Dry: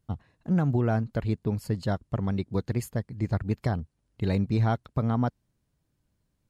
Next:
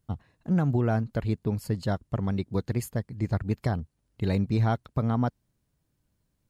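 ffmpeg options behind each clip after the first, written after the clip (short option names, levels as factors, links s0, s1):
-af "highshelf=f=9800:g=4.5"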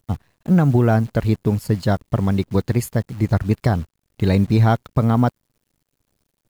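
-filter_complex "[0:a]asplit=2[s0][s1];[s1]aeval=exprs='sgn(val(0))*max(abs(val(0))-0.00631,0)':c=same,volume=0.596[s2];[s0][s2]amix=inputs=2:normalize=0,acrusher=bits=9:dc=4:mix=0:aa=0.000001,volume=1.88"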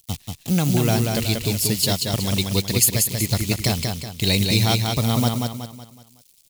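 -filter_complex "[0:a]aexciter=amount=4.7:drive=9.8:freq=2300,asplit=2[s0][s1];[s1]aecho=0:1:186|372|558|744|930:0.631|0.259|0.106|0.0435|0.0178[s2];[s0][s2]amix=inputs=2:normalize=0,volume=0.531"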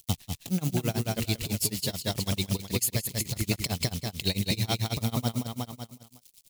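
-af "acompressor=threshold=0.0631:ratio=6,tremolo=f=9.1:d=0.96,volume=1.33"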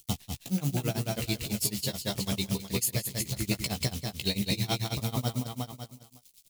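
-filter_complex "[0:a]asplit=2[s0][s1];[s1]adelay=15,volume=0.562[s2];[s0][s2]amix=inputs=2:normalize=0,volume=0.75"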